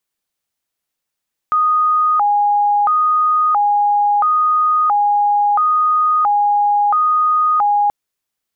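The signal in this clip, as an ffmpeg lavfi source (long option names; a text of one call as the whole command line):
ffmpeg -f lavfi -i "aevalsrc='0.282*sin(2*PI*(1031.5*t+208.5/0.74*(0.5-abs(mod(0.74*t,1)-0.5))))':duration=6.38:sample_rate=44100" out.wav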